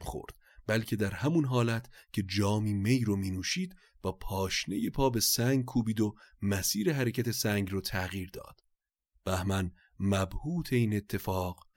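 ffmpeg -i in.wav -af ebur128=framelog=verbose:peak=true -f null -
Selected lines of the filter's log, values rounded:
Integrated loudness:
  I:         -31.2 LUFS
  Threshold: -41.6 LUFS
Loudness range:
  LRA:         4.1 LU
  Threshold: -51.5 LUFS
  LRA low:   -33.9 LUFS
  LRA high:  -29.8 LUFS
True peak:
  Peak:      -15.4 dBFS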